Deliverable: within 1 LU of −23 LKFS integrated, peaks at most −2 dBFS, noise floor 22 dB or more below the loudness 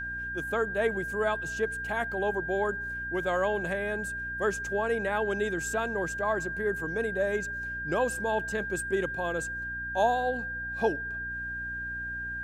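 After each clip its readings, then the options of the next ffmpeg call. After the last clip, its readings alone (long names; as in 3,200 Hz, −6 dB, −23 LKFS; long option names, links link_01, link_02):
mains hum 60 Hz; hum harmonics up to 300 Hz; level of the hum −42 dBFS; interfering tone 1,600 Hz; level of the tone −33 dBFS; integrated loudness −30.0 LKFS; sample peak −14.0 dBFS; target loudness −23.0 LKFS
→ -af "bandreject=frequency=60:width_type=h:width=6,bandreject=frequency=120:width_type=h:width=6,bandreject=frequency=180:width_type=h:width=6,bandreject=frequency=240:width_type=h:width=6,bandreject=frequency=300:width_type=h:width=6"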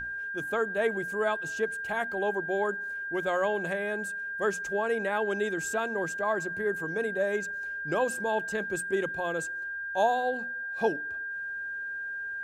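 mains hum none found; interfering tone 1,600 Hz; level of the tone −33 dBFS
→ -af "bandreject=frequency=1600:width=30"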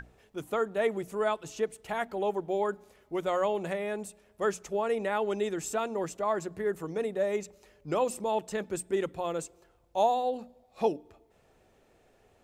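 interfering tone none found; integrated loudness −31.5 LKFS; sample peak −15.0 dBFS; target loudness −23.0 LKFS
→ -af "volume=8.5dB"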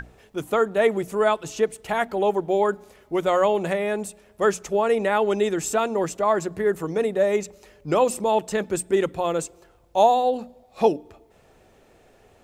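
integrated loudness −23.0 LKFS; sample peak −6.5 dBFS; background noise floor −57 dBFS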